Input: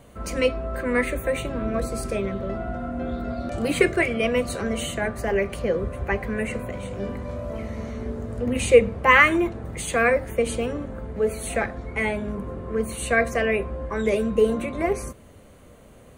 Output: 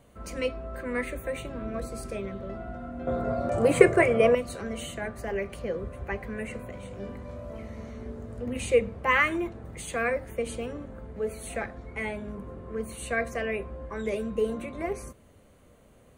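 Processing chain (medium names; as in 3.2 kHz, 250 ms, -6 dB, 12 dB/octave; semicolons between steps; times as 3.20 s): 3.07–4.35 s: ten-band graphic EQ 125 Hz +12 dB, 500 Hz +12 dB, 1 kHz +10 dB, 2 kHz +4 dB, 4 kHz -4 dB, 8 kHz +8 dB; trim -8 dB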